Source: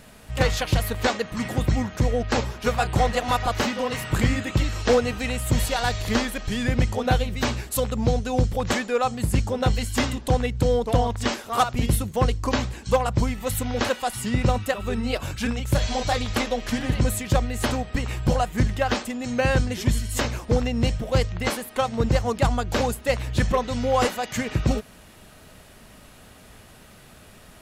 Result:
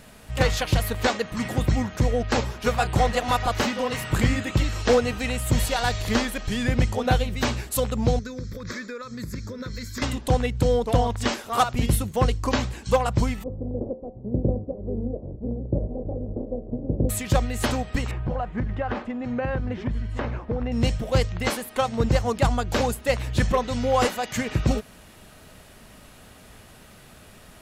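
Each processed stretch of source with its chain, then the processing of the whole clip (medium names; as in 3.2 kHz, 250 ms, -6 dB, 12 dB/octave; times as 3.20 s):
8.19–10.02 s: bass shelf 89 Hz -11 dB + compression 5:1, threshold -27 dBFS + static phaser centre 2.9 kHz, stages 6
13.42–17.09 s: spectral contrast reduction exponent 0.54 + steep low-pass 560 Hz + de-hum 74.4 Hz, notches 17
18.11–20.72 s: low-pass 1.7 kHz + compression, threshold -22 dBFS
whole clip: none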